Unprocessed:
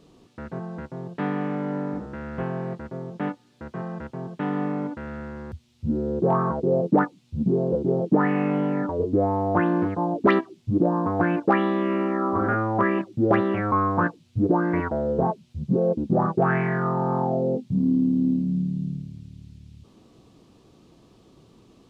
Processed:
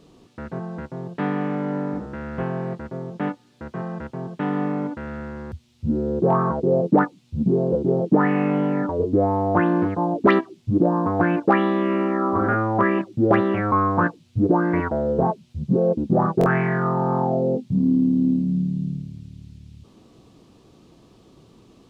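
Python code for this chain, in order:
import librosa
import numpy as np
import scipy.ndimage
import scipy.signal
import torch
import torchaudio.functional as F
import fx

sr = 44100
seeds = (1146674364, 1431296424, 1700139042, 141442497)

y = fx.buffer_glitch(x, sr, at_s=(16.39,), block=1024, repeats=2)
y = F.gain(torch.from_numpy(y), 2.5).numpy()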